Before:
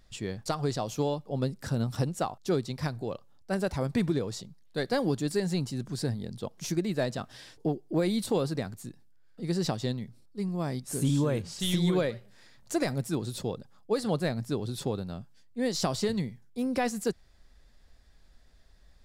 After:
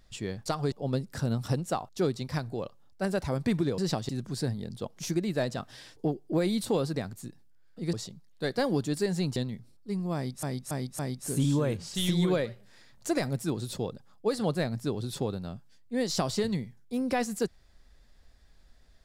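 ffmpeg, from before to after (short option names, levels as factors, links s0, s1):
-filter_complex "[0:a]asplit=9[s0][s1][s2][s3][s4][s5][s6][s7][s8];[s0]atrim=end=0.722[s9];[s1]atrim=start=1.208:end=4.272[s10];[s2]atrim=start=9.538:end=9.852[s11];[s3]atrim=start=5.698:end=9.542[s12];[s4]atrim=start=4.268:end=5.702[s13];[s5]atrim=start=9.848:end=10.922[s14];[s6]atrim=start=10.638:end=10.922[s15];[s7]atrim=start=10.638:end=10.922[s16];[s8]atrim=start=10.638[s17];[s9][s10]acrossfade=d=0.004:c1=hsin:c2=hsin[s18];[s18][s11]acrossfade=d=0.004:c1=hsin:c2=hsin[s19];[s19][s12]acrossfade=d=0.004:c1=hsin:c2=hsin[s20];[s20][s13]acrossfade=d=0.004:c1=hsin:c2=hsin[s21];[s21][s14]acrossfade=d=0.004:c1=hsin:c2=hsin[s22];[s22][s15]acrossfade=d=0.004:c1=hsin:c2=hsin[s23];[s23][s16]acrossfade=d=0.004:c1=hsin:c2=hsin[s24];[s24][s17]acrossfade=d=0.004:c1=hsin:c2=hsin"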